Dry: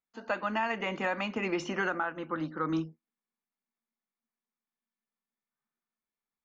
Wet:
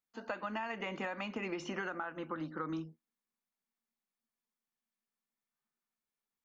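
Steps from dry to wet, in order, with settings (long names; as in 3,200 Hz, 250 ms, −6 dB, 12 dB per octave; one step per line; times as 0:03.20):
downward compressor, threshold −34 dBFS, peak gain reduction 8 dB
level −1.5 dB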